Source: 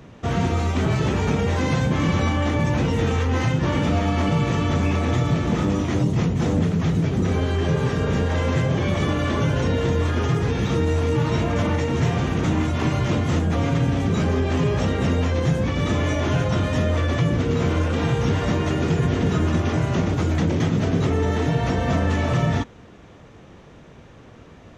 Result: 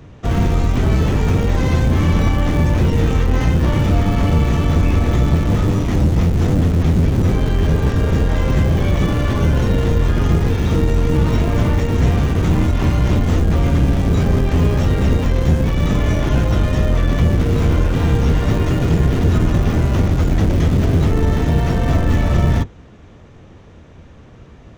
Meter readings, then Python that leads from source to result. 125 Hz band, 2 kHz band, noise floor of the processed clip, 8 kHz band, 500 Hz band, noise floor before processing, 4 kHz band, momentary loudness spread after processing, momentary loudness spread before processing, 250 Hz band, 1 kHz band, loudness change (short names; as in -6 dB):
+6.0 dB, +1.0 dB, -41 dBFS, n/a, +2.0 dB, -46 dBFS, +1.0 dB, 2 LU, 1 LU, +3.5 dB, +1.0 dB, +5.0 dB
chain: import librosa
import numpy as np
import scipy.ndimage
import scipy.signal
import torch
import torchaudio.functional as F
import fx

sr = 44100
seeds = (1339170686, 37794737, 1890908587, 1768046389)

p1 = fx.octave_divider(x, sr, octaves=1, level_db=4.0)
p2 = fx.schmitt(p1, sr, flips_db=-16.5)
y = p1 + (p2 * 10.0 ** (-10.0 / 20.0))